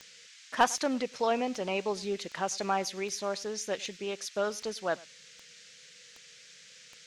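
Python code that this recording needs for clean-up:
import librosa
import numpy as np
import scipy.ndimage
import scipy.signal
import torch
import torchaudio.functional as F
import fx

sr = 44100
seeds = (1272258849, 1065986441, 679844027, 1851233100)

y = fx.fix_declip(x, sr, threshold_db=-13.5)
y = fx.fix_declick_ar(y, sr, threshold=10.0)
y = fx.noise_reduce(y, sr, print_start_s=5.74, print_end_s=6.24, reduce_db=24.0)
y = fx.fix_echo_inverse(y, sr, delay_ms=103, level_db=-23.5)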